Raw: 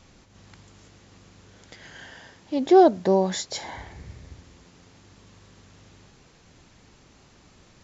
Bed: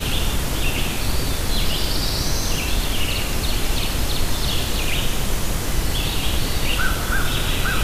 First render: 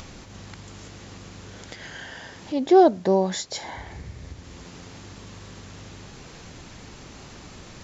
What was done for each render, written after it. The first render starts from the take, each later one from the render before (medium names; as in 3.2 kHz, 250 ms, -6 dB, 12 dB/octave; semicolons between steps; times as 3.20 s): upward compressor, threshold -31 dBFS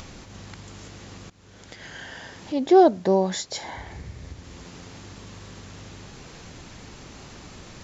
1.30–2.27 s: fade in equal-power, from -19.5 dB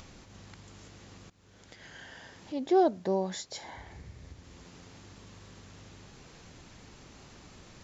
trim -9 dB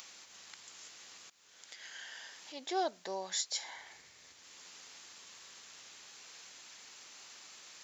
high-pass 1.2 kHz 6 dB/octave; tilt EQ +2.5 dB/octave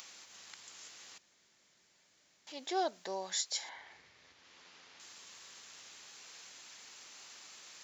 1.18–2.47 s: room tone; 3.69–5.00 s: distance through air 160 m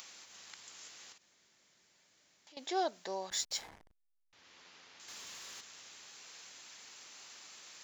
1.12–2.57 s: compression, threshold -57 dBFS; 3.30–4.33 s: hysteresis with a dead band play -40 dBFS; 5.08–5.61 s: waveshaping leveller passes 2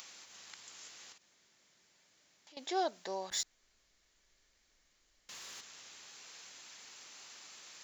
3.43–5.29 s: room tone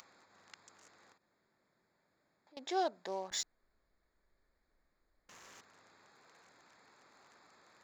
local Wiener filter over 15 samples; treble shelf 6.2 kHz -4 dB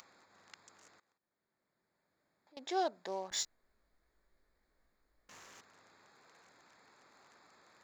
1.00–2.77 s: fade in, from -20 dB; 3.34–5.44 s: doubling 19 ms -4 dB